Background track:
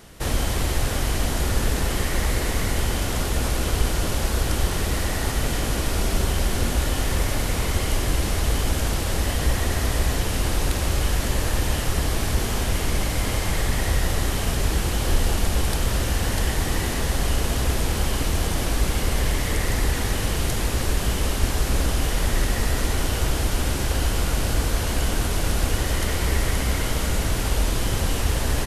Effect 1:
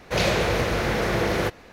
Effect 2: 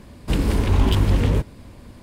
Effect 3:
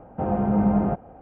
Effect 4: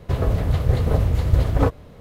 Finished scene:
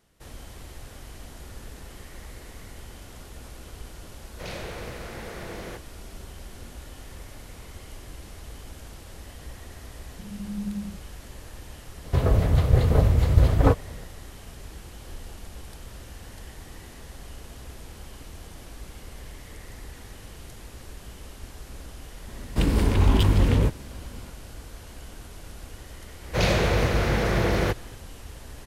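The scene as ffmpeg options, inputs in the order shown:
-filter_complex "[1:a]asplit=2[s0][s1];[0:a]volume=0.106[s2];[3:a]asuperpass=centerf=190:order=4:qfactor=4[s3];[s1]lowshelf=f=130:g=9.5[s4];[s0]atrim=end=1.72,asetpts=PTS-STARTPTS,volume=0.178,afade=t=in:d=0.004:c=hsin,afade=t=out:st=1.716:d=0.004:c=hsin,adelay=4280[s5];[s3]atrim=end=1.21,asetpts=PTS-STARTPTS,volume=0.316,afade=t=in:d=0.004:c=hsin,afade=t=out:st=1.206:d=0.004:c=hsin,adelay=10000[s6];[4:a]atrim=end=2,asetpts=PTS-STARTPTS,afade=t=in:d=0.004:c=hsin,afade=t=out:st=1.996:d=0.004:c=hsin,adelay=12040[s7];[2:a]atrim=end=2.02,asetpts=PTS-STARTPTS,volume=0.841,afade=t=in:d=0.004:c=hsin,afade=t=out:st=2.016:d=0.004:c=hsin,adelay=982548S[s8];[s4]atrim=end=1.72,asetpts=PTS-STARTPTS,volume=0.794,afade=t=in:d=0.004:c=hsin,afade=t=out:st=1.716:d=0.004:c=hsin,adelay=26230[s9];[s2][s5][s6][s7][s8][s9]amix=inputs=6:normalize=0"

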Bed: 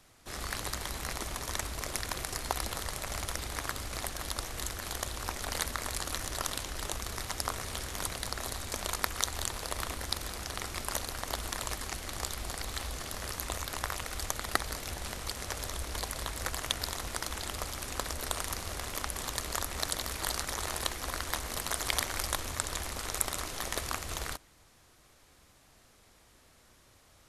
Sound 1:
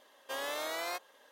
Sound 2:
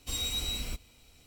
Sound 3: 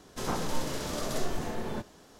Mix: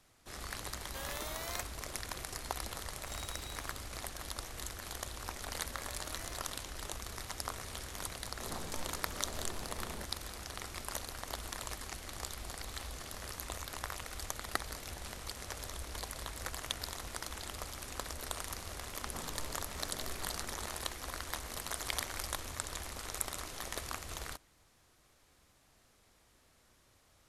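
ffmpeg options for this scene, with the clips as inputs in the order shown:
-filter_complex "[1:a]asplit=2[s0][s1];[3:a]asplit=2[s2][s3];[0:a]volume=0.501[s4];[s0]highshelf=f=8000:g=11,atrim=end=1.31,asetpts=PTS-STARTPTS,volume=0.398,afade=t=in:d=0.004:c=hsin,afade=t=out:st=1.306:d=0.004:c=hsin,adelay=650[s5];[2:a]atrim=end=1.26,asetpts=PTS-STARTPTS,volume=0.133,afade=t=in:d=0.004:c=hsin,afade=t=out:st=1.256:d=0.004:c=hsin,adelay=2980[s6];[s1]atrim=end=1.31,asetpts=PTS-STARTPTS,volume=0.158,afade=t=in:d=0.004:c=hsin,afade=t=out:st=1.306:d=0.004:c=hsin,adelay=5430[s7];[s2]atrim=end=2.19,asetpts=PTS-STARTPTS,volume=0.224,afade=t=in:d=0.004:c=hsin,afade=t=out:st=2.186:d=0.004:c=hsin,adelay=8230[s8];[s3]atrim=end=2.19,asetpts=PTS-STARTPTS,volume=0.158,afade=t=in:d=0.004:c=hsin,afade=t=out:st=2.186:d=0.004:c=hsin,adelay=18860[s9];[s4][s5][s6][s7][s8][s9]amix=inputs=6:normalize=0"

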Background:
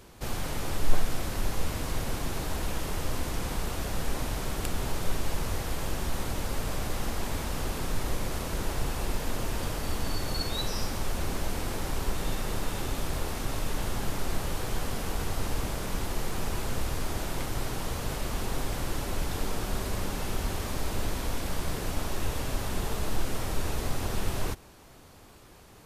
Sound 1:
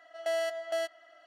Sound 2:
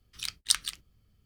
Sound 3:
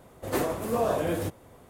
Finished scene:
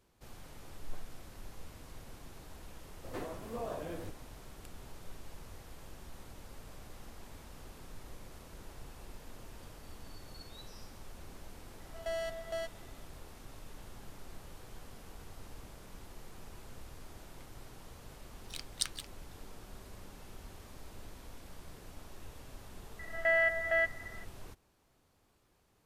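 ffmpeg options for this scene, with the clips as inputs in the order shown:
-filter_complex "[1:a]asplit=2[s0][s1];[0:a]volume=0.112[s2];[3:a]acrossover=split=5600[s3][s4];[s4]acompressor=threshold=0.00398:ratio=4:attack=1:release=60[s5];[s3][s5]amix=inputs=2:normalize=0[s6];[s1]lowpass=f=1900:t=q:w=8[s7];[s6]atrim=end=1.69,asetpts=PTS-STARTPTS,volume=0.2,afade=t=in:d=0.004:c=hsin,afade=t=out:st=1.686:d=0.004:c=hsin,adelay=2810[s8];[s0]atrim=end=1.26,asetpts=PTS-STARTPTS,volume=0.473,afade=t=in:d=0.004:c=hsin,afade=t=out:st=1.256:d=0.004:c=hsin,adelay=11800[s9];[2:a]atrim=end=1.25,asetpts=PTS-STARTPTS,volume=0.335,afade=t=in:d=0.004:c=hsin,afade=t=out:st=1.246:d=0.004:c=hsin,adelay=18310[s10];[s7]atrim=end=1.26,asetpts=PTS-STARTPTS,volume=0.75,afade=t=in:d=0.004:c=hsin,afade=t=out:st=1.256:d=0.004:c=hsin,adelay=22990[s11];[s2][s8][s9][s10][s11]amix=inputs=5:normalize=0"

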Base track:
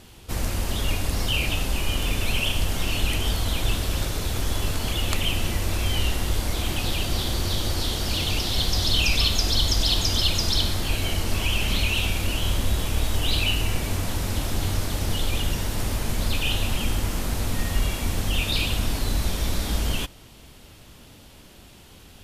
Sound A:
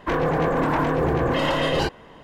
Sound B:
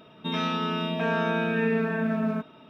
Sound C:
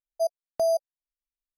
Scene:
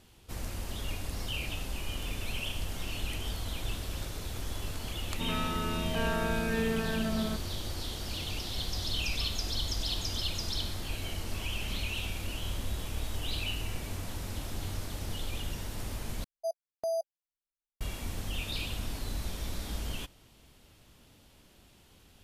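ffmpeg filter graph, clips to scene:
-filter_complex "[0:a]volume=0.266,asplit=2[s0][s1];[s0]atrim=end=16.244[s2];[3:a]atrim=end=1.57,asetpts=PTS-STARTPTS,volume=0.376[s3];[s1]atrim=start=17.806[s4];[2:a]atrim=end=2.69,asetpts=PTS-STARTPTS,volume=0.501,afade=t=in:d=0.004:c=hsin,afade=t=out:st=2.686:d=0.004:c=hsin,adelay=4950[s5];[s2][s3]acrossfade=d=0.004:c1=hsin:c2=hsin[s6];[s6][s4]acrossfade=d=0.004:c1=hsin:c2=hsin[s7];[s7][s5]amix=inputs=2:normalize=0"

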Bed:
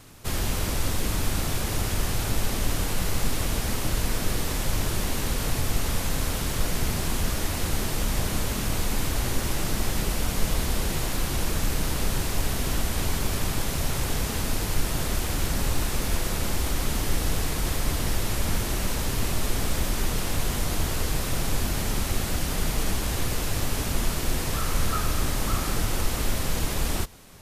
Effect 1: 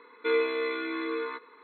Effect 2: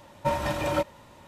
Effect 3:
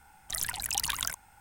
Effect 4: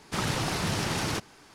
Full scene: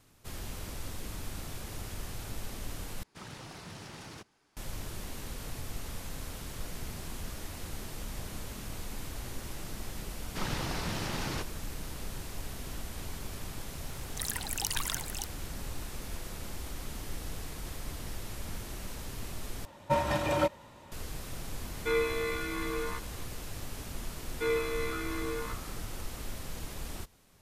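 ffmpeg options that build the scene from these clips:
-filter_complex "[4:a]asplit=2[s0][s1];[1:a]asplit=2[s2][s3];[0:a]volume=0.2[s4];[s1]lowpass=7200[s5];[3:a]aecho=1:1:570:0.501[s6];[s2]lowshelf=f=190:g=-10.5[s7];[s4]asplit=3[s8][s9][s10];[s8]atrim=end=3.034[s11];[s0]atrim=end=1.54,asetpts=PTS-STARTPTS,volume=0.141[s12];[s9]atrim=start=4.566:end=19.654[s13];[2:a]atrim=end=1.27,asetpts=PTS-STARTPTS,volume=0.841[s14];[s10]atrim=start=20.916[s15];[s5]atrim=end=1.54,asetpts=PTS-STARTPTS,volume=0.473,afade=t=in:d=0.004:c=hsin,afade=t=out:st=1.536:d=0.004:c=hsin,adelay=10230[s16];[s6]atrim=end=1.4,asetpts=PTS-STARTPTS,volume=0.708,afade=t=in:d=0.004:c=hsin,afade=t=out:st=1.396:d=0.004:c=hsin,adelay=13870[s17];[s7]atrim=end=1.63,asetpts=PTS-STARTPTS,volume=0.794,afade=t=in:d=0.004:c=hsin,afade=t=out:st=1.626:d=0.004:c=hsin,adelay=21610[s18];[s3]atrim=end=1.63,asetpts=PTS-STARTPTS,volume=0.596,afade=t=in:d=0.004:c=hsin,afade=t=out:st=1.626:d=0.004:c=hsin,adelay=24160[s19];[s11][s12]acrossfade=d=0.004:c1=hsin:c2=hsin[s20];[s20][s13]acrossfade=d=0.004:c1=hsin:c2=hsin[s21];[s21][s14]acrossfade=d=0.004:c1=hsin:c2=hsin[s22];[s22][s15]acrossfade=d=0.004:c1=hsin:c2=hsin[s23];[s23][s16][s17][s18][s19]amix=inputs=5:normalize=0"

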